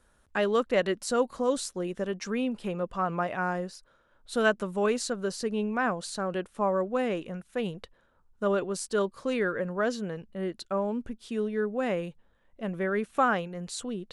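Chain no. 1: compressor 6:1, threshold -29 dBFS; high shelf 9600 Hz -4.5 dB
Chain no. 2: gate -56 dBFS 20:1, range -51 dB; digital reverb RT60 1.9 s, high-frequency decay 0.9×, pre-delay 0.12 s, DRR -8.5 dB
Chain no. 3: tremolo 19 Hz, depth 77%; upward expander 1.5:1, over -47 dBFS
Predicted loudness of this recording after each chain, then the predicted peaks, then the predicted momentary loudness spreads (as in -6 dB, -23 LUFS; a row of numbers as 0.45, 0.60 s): -35.0, -21.0, -36.5 LUFS; -18.0, -4.5, -11.0 dBFS; 5, 8, 13 LU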